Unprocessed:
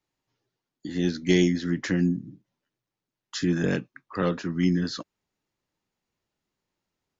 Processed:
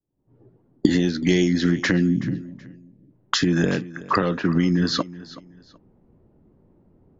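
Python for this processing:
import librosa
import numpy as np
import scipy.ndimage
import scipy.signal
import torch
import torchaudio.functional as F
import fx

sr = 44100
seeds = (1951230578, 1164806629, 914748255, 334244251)

p1 = fx.recorder_agc(x, sr, target_db=-13.0, rise_db_per_s=71.0, max_gain_db=30)
p2 = fx.env_lowpass(p1, sr, base_hz=370.0, full_db=-16.0)
p3 = fx.spec_box(p2, sr, start_s=1.98, length_s=1.12, low_hz=680.0, high_hz=1600.0, gain_db=-11)
p4 = p3 + fx.echo_feedback(p3, sr, ms=376, feedback_pct=27, wet_db=-18.0, dry=0)
y = p4 * 10.0 ** (1.0 / 20.0)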